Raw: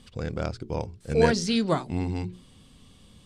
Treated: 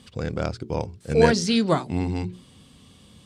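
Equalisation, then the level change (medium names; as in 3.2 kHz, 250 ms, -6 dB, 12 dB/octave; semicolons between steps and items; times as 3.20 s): high-pass 69 Hz; +3.5 dB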